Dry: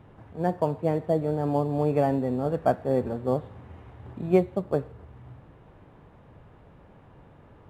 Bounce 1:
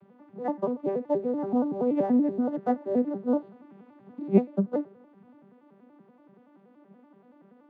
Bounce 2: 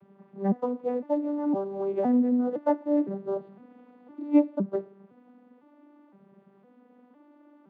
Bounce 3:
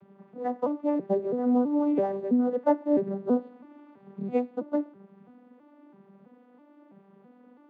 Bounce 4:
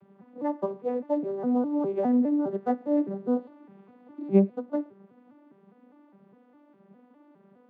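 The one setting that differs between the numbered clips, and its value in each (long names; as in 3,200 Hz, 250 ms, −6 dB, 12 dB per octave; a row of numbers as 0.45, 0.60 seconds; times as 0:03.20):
vocoder with an arpeggio as carrier, a note every: 95, 510, 329, 204 milliseconds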